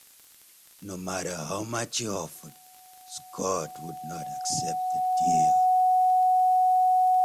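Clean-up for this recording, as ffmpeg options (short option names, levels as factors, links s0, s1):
-af "adeclick=t=4,bandreject=f=740:w=30,afftdn=nr=17:nf=-54"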